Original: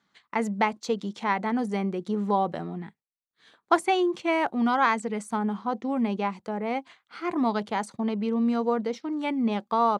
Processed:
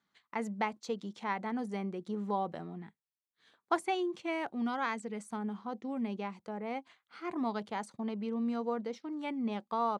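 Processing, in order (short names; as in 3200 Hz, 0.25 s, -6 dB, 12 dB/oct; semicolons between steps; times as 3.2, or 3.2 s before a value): 3.94–6.31 dynamic EQ 990 Hz, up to -4 dB, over -36 dBFS, Q 1.1; gain -9 dB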